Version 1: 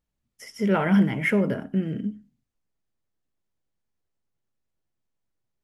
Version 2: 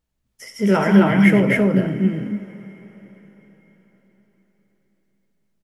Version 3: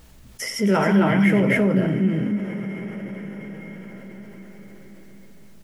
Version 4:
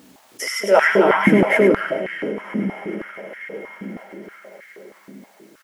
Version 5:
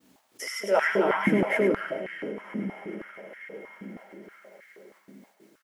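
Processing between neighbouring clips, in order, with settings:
on a send: loudspeakers at several distances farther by 30 m -12 dB, 91 m -1 dB; on the sum: two-slope reverb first 0.3 s, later 4.8 s, from -19 dB, DRR 8.5 dB; trim +4 dB
level flattener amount 50%; trim -6 dB
delay 103 ms -6.5 dB; step-sequenced high-pass 6.3 Hz 250–1800 Hz; trim +2 dB
expander -46 dBFS; trim -9 dB

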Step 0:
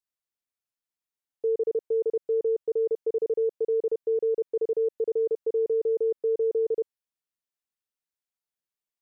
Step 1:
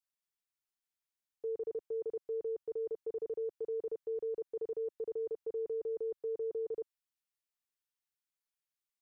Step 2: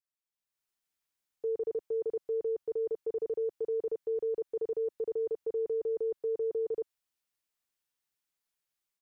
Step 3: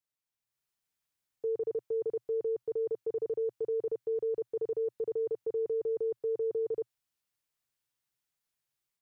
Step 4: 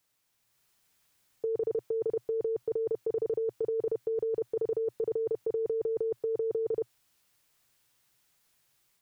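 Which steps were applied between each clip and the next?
graphic EQ 125/250/500 Hz -4/-6/-9 dB; trim -2 dB
level rider gain up to 11.5 dB; trim -6.5 dB
peaking EQ 120 Hz +10.5 dB 0.59 oct
compressor with a negative ratio -38 dBFS, ratio -1; trim +8.5 dB

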